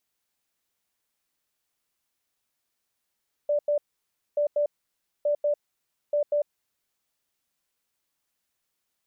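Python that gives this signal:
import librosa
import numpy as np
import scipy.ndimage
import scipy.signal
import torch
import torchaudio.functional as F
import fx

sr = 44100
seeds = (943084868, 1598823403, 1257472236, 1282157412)

y = fx.beep_pattern(sr, wave='sine', hz=587.0, on_s=0.1, off_s=0.09, beeps=2, pause_s=0.59, groups=4, level_db=-20.5)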